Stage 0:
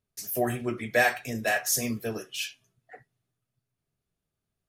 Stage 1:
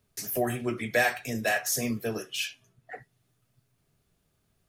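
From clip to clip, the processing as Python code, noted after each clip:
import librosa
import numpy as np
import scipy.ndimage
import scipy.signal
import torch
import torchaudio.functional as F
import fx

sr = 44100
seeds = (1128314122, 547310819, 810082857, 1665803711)

y = fx.band_squash(x, sr, depth_pct=40)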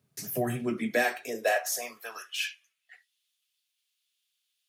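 y = fx.filter_sweep_highpass(x, sr, from_hz=140.0, to_hz=3200.0, start_s=0.49, end_s=2.96, q=2.7)
y = F.gain(torch.from_numpy(y), -3.0).numpy()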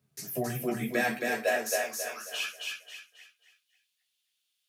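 y = fx.chorus_voices(x, sr, voices=2, hz=0.78, base_ms=14, depth_ms=1.5, mix_pct=40)
y = fx.echo_feedback(y, sr, ms=270, feedback_pct=35, wet_db=-3.0)
y = F.gain(torch.from_numpy(y), 1.0).numpy()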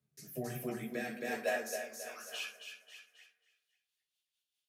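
y = fx.rotary_switch(x, sr, hz=1.2, then_hz=5.0, switch_at_s=3.23)
y = fx.rev_fdn(y, sr, rt60_s=1.4, lf_ratio=1.05, hf_ratio=0.25, size_ms=38.0, drr_db=9.5)
y = F.gain(torch.from_numpy(y), -6.5).numpy()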